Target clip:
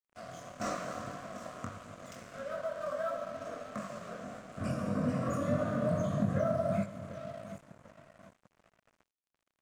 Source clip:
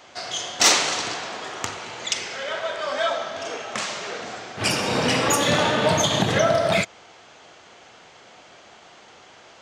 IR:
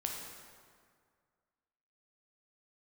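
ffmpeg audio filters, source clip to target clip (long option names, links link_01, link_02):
-filter_complex "[0:a]aecho=1:1:743|1486|2229:0.126|0.0504|0.0201,acrossover=split=5300[link_01][link_02];[link_02]acompressor=threshold=-45dB:ratio=4:attack=1:release=60[link_03];[link_01][link_03]amix=inputs=2:normalize=0,firequalizer=gain_entry='entry(140,0);entry(220,3);entry(390,-16);entry(560,-2);entry(1300,-6);entry(1900,-17);entry(3400,-28);entry(8300,-5)':delay=0.05:min_phase=1,flanger=delay=19.5:depth=3.6:speed=1.6,asuperstop=centerf=860:order=4:qfactor=2.8,lowshelf=frequency=420:gain=2.5,asplit=2[link_04][link_05];[1:a]atrim=start_sample=2205[link_06];[link_05][link_06]afir=irnorm=-1:irlink=0,volume=-8dB[link_07];[link_04][link_07]amix=inputs=2:normalize=0,aeval=exprs='sgn(val(0))*max(abs(val(0))-0.00422,0)':channel_layout=same,acompressor=threshold=-36dB:ratio=1.5,volume=-2dB"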